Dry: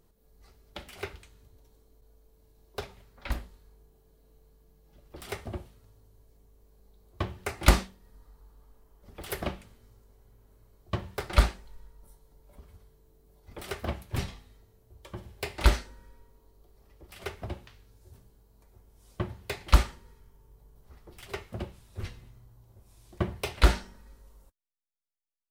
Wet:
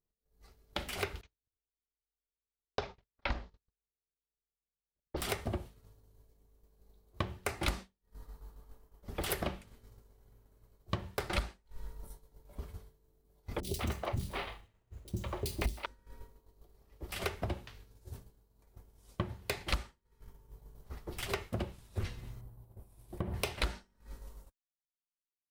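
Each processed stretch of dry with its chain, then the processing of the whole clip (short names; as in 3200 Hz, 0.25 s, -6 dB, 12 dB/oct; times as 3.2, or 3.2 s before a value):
1.21–5.17 gate -53 dBFS, range -19 dB + steep low-pass 6100 Hz + dynamic EQ 810 Hz, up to +5 dB, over -52 dBFS, Q 0.76
13.6–15.86 bell 1600 Hz -8 dB 0.21 oct + sample-rate reducer 6900 Hz + three bands offset in time lows, highs, mids 30/190 ms, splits 370/3900 Hz
22.41–23.34 EQ curve 800 Hz 0 dB, 1200 Hz -4 dB, 6700 Hz -11 dB, 9800 Hz -1 dB + compressor 3:1, threshold -37 dBFS
whole clip: compressor 8:1, threshold -41 dBFS; expander -48 dBFS; AGC gain up to 6 dB; gain +3 dB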